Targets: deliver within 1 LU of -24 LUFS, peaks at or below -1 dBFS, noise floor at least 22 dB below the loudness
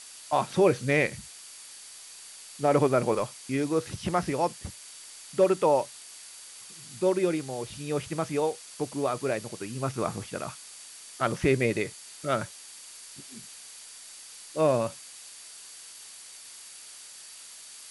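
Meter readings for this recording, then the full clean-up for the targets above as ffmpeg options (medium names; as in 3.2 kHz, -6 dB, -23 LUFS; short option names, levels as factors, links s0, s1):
steady tone 4.6 kHz; tone level -55 dBFS; noise floor -47 dBFS; noise floor target -50 dBFS; loudness -28.0 LUFS; peak level -10.5 dBFS; loudness target -24.0 LUFS
-> -af "bandreject=f=4600:w=30"
-af "afftdn=nr=6:nf=-47"
-af "volume=1.58"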